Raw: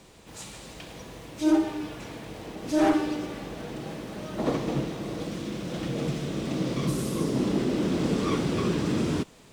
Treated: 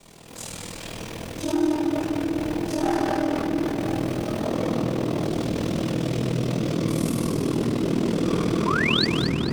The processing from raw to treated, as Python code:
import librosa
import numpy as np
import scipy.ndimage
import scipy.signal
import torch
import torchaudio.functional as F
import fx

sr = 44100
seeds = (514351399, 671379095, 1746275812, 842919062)

p1 = fx.room_shoebox(x, sr, seeds[0], volume_m3=190.0, walls='hard', distance_m=1.3)
p2 = fx.spec_paint(p1, sr, seeds[1], shape='rise', start_s=8.66, length_s=0.4, low_hz=930.0, high_hz=4900.0, level_db=-15.0)
p3 = p2 * np.sin(2.0 * np.pi * 20.0 * np.arange(len(p2)) / sr)
p4 = fx.over_compress(p3, sr, threshold_db=-26.0, ratio=-1.0)
p5 = p3 + (p4 * 10.0 ** (-2.5 / 20.0))
p6 = fx.high_shelf(p5, sr, hz=6400.0, db=9.0)
p7 = p6 + fx.echo_split(p6, sr, split_hz=560.0, low_ms=111, high_ms=225, feedback_pct=52, wet_db=-8.5, dry=0)
y = p7 * 10.0 ** (-8.0 / 20.0)